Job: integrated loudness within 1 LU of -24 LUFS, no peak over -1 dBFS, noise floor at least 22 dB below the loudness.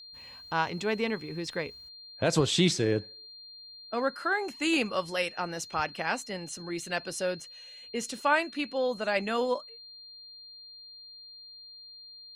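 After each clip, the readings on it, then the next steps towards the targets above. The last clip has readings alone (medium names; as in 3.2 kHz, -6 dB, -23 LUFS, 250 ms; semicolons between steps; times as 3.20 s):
steady tone 4.2 kHz; tone level -46 dBFS; loudness -30.0 LUFS; peak level -12.5 dBFS; loudness target -24.0 LUFS
-> band-stop 4.2 kHz, Q 30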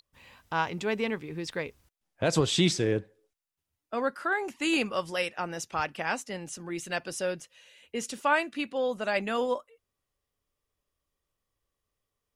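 steady tone not found; loudness -30.0 LUFS; peak level -12.5 dBFS; loudness target -24.0 LUFS
-> trim +6 dB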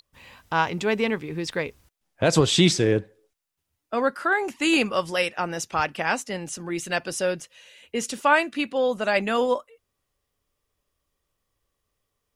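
loudness -24.0 LUFS; peak level -6.5 dBFS; noise floor -80 dBFS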